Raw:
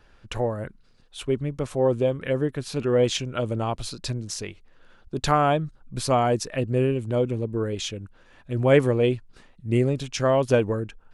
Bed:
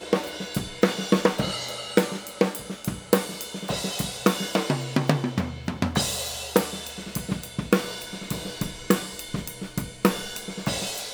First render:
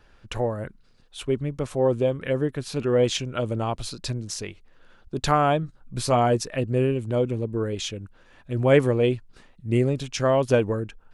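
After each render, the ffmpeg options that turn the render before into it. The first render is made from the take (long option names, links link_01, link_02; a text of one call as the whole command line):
ffmpeg -i in.wav -filter_complex "[0:a]asettb=1/sr,asplit=3[link_01][link_02][link_03];[link_01]atrim=end=5.614[link_04];[link_02]atrim=start=5.61:end=6.44,asetpts=PTS-STARTPTS,afade=type=in:duration=0.004:curve=qsin,afade=type=out:start_time=0.826:duration=0.004:curve=qsin,asplit=2[link_05][link_06];[link_06]adelay=17,volume=-10dB[link_07];[link_05][link_07]amix=inputs=2:normalize=0,atrim=end_sample=36603[link_08];[link_03]atrim=start=6.436[link_09];[link_04][link_08]acrossfade=duration=0.004:curve1=hsin:curve2=qsin[link_10];[link_10][link_09]acrossfade=duration=0.004:curve1=qsin:curve2=hsin" out.wav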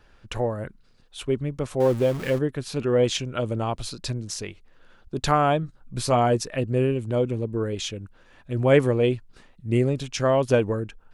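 ffmpeg -i in.wav -filter_complex "[0:a]asettb=1/sr,asplit=3[link_01][link_02][link_03];[link_01]atrim=end=1.804[link_04];[link_02]atrim=start=1.8:end=2.39,asetpts=PTS-STARTPTS,afade=type=in:duration=0.004:curve=qsin,afade=type=out:start_time=0.586:duration=0.004:curve=qsin,aeval=exprs='val(0)+0.5*0.0266*sgn(val(0))':channel_layout=same[link_05];[link_03]atrim=start=2.386[link_06];[link_04][link_05]acrossfade=duration=0.004:curve1=hsin:curve2=qsin[link_07];[link_07][link_06]acrossfade=duration=0.004:curve1=qsin:curve2=hsin" out.wav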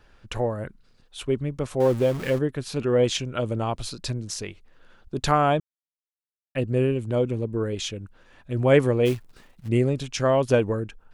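ffmpeg -i in.wav -filter_complex "[0:a]asplit=3[link_01][link_02][link_03];[link_01]afade=type=out:start_time=9.05:duration=0.02[link_04];[link_02]acrusher=bits=4:mode=log:mix=0:aa=0.000001,afade=type=in:start_time=9.05:duration=0.02,afade=type=out:start_time=9.67:duration=0.02[link_05];[link_03]afade=type=in:start_time=9.67:duration=0.02[link_06];[link_04][link_05][link_06]amix=inputs=3:normalize=0,asplit=3[link_07][link_08][link_09];[link_07]atrim=end=5.6,asetpts=PTS-STARTPTS,afade=type=out:start_time=5.596:duration=0.004:curve=hsin[link_10];[link_08]atrim=start=5.6:end=6.55,asetpts=PTS-STARTPTS,volume=0[link_11];[link_09]atrim=start=6.55,asetpts=PTS-STARTPTS,afade=type=in:duration=0.004:curve=hsin[link_12];[link_10][link_11][link_12]concat=n=3:v=0:a=1" out.wav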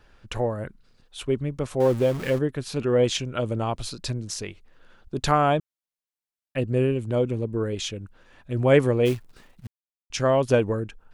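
ffmpeg -i in.wav -filter_complex "[0:a]asplit=3[link_01][link_02][link_03];[link_01]atrim=end=9.67,asetpts=PTS-STARTPTS,afade=type=out:start_time=9.666:duration=0.004:curve=hsin[link_04];[link_02]atrim=start=9.67:end=10.1,asetpts=PTS-STARTPTS,volume=0[link_05];[link_03]atrim=start=10.1,asetpts=PTS-STARTPTS,afade=type=in:duration=0.004:curve=hsin[link_06];[link_04][link_05][link_06]concat=n=3:v=0:a=1" out.wav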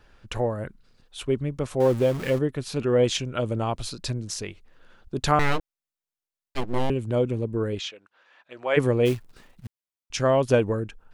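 ffmpeg -i in.wav -filter_complex "[0:a]asettb=1/sr,asplit=3[link_01][link_02][link_03];[link_01]atrim=end=2.274[link_04];[link_02]atrim=start=2.27:end=2.67,asetpts=PTS-STARTPTS,afade=type=in:duration=0.004:curve=qsin,afade=type=out:start_time=0.396:duration=0.004:curve=qsin,bandreject=frequency=1600:width=12[link_05];[link_03]atrim=start=2.666[link_06];[link_04][link_05]acrossfade=duration=0.004:curve1=hsin:curve2=qsin[link_07];[link_07][link_06]acrossfade=duration=0.004:curve1=qsin:curve2=hsin,asettb=1/sr,asplit=3[link_08][link_09][link_10];[link_08]atrim=end=5.394[link_11];[link_09]atrim=start=5.39:end=6.9,asetpts=PTS-STARTPTS,afade=type=in:duration=0.004:curve=qsin,afade=type=out:start_time=1.506:duration=0.004:curve=qsin,aeval=exprs='abs(val(0))':channel_layout=same[link_12];[link_10]atrim=start=6.896[link_13];[link_11][link_12]acrossfade=duration=0.004:curve1=hsin:curve2=qsin[link_14];[link_14][link_13]acrossfade=duration=0.004:curve1=qsin:curve2=hsin,asplit=3[link_15][link_16][link_17];[link_15]afade=type=out:start_time=7.78:duration=0.02[link_18];[link_16]highpass=750,lowpass=4400,afade=type=in:start_time=7.78:duration=0.02,afade=type=out:start_time=8.76:duration=0.02[link_19];[link_17]afade=type=in:start_time=8.76:duration=0.02[link_20];[link_18][link_19][link_20]amix=inputs=3:normalize=0" out.wav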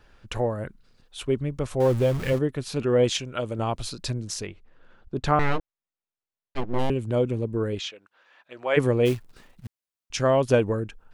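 ffmpeg -i in.wav -filter_complex "[0:a]asettb=1/sr,asplit=3[link_01][link_02][link_03];[link_01]atrim=end=1.344[link_04];[link_02]atrim=start=1.34:end=2.33,asetpts=PTS-STARTPTS,afade=type=in:duration=0.004:curve=qsin,afade=type=out:start_time=0.986:duration=0.004:curve=qsin,asubboost=boost=9:cutoff=130[link_05];[link_03]atrim=start=2.326[link_06];[link_04][link_05]acrossfade=duration=0.004:curve1=hsin:curve2=qsin[link_07];[link_07][link_06]acrossfade=duration=0.004:curve1=qsin:curve2=hsin,asettb=1/sr,asplit=3[link_08][link_09][link_10];[link_08]atrim=end=3.094[link_11];[link_09]atrim=start=3.09:end=3.59,asetpts=PTS-STARTPTS,afade=type=in:duration=0.004:curve=qsin,afade=type=out:start_time=0.496:duration=0.004:curve=qsin,lowshelf=frequency=380:gain=-6[link_12];[link_10]atrim=start=3.586[link_13];[link_11][link_12]acrossfade=duration=0.004:curve1=hsin:curve2=qsin[link_14];[link_14][link_13]acrossfade=duration=0.004:curve1=qsin:curve2=hsin,asettb=1/sr,asplit=3[link_15][link_16][link_17];[link_15]atrim=end=4.464[link_18];[link_16]atrim=start=4.46:end=6.79,asetpts=PTS-STARTPTS,afade=type=in:duration=0.004:curve=qsin,afade=type=out:start_time=2.326:duration=0.004:curve=qsin,lowpass=frequency=2100:poles=1[link_19];[link_17]atrim=start=6.786[link_20];[link_18][link_19]acrossfade=duration=0.004:curve1=hsin:curve2=qsin[link_21];[link_21][link_20]acrossfade=duration=0.004:curve1=qsin:curve2=hsin" out.wav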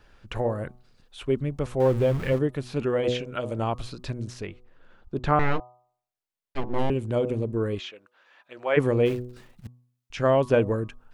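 ffmpeg -i in.wav -filter_complex "[0:a]acrossover=split=3100[link_01][link_02];[link_02]acompressor=threshold=-48dB:ratio=4:attack=1:release=60[link_03];[link_01][link_03]amix=inputs=2:normalize=0,bandreject=frequency=123.3:width_type=h:width=4,bandreject=frequency=246.6:width_type=h:width=4,bandreject=frequency=369.9:width_type=h:width=4,bandreject=frequency=493.2:width_type=h:width=4,bandreject=frequency=616.5:width_type=h:width=4,bandreject=frequency=739.8:width_type=h:width=4,bandreject=frequency=863.1:width_type=h:width=4,bandreject=frequency=986.4:width_type=h:width=4,bandreject=frequency=1109.7:width_type=h:width=4,bandreject=frequency=1233:width_type=h:width=4" out.wav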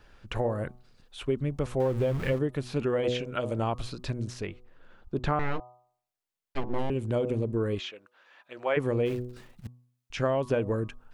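ffmpeg -i in.wav -af "acompressor=threshold=-23dB:ratio=6" out.wav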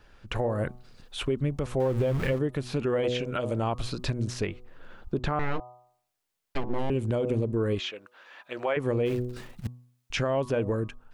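ffmpeg -i in.wav -af "dynaudnorm=framelen=120:gausssize=7:maxgain=7.5dB,alimiter=limit=-18dB:level=0:latency=1:release=370" out.wav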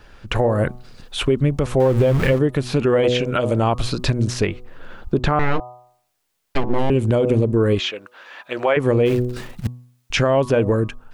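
ffmpeg -i in.wav -af "volume=10dB" out.wav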